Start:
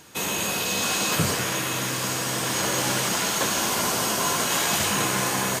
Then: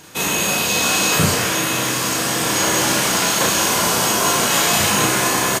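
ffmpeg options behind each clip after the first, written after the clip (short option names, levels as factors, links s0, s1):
-filter_complex "[0:a]asplit=2[s0][s1];[s1]adelay=34,volume=0.75[s2];[s0][s2]amix=inputs=2:normalize=0,volume=1.78"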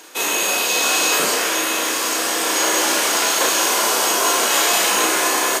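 -af "highpass=f=310:w=0.5412,highpass=f=310:w=1.3066,areverse,acompressor=mode=upward:threshold=0.0631:ratio=2.5,areverse"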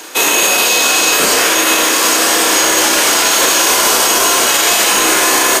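-filter_complex "[0:a]acrossover=split=400|1400[s0][s1][s2];[s1]asoftclip=type=hard:threshold=0.0596[s3];[s0][s3][s2]amix=inputs=3:normalize=0,alimiter=level_in=3.98:limit=0.891:release=50:level=0:latency=1,volume=0.891"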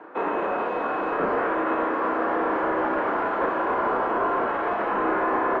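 -af "lowpass=f=1400:w=0.5412,lowpass=f=1400:w=1.3066,volume=0.447"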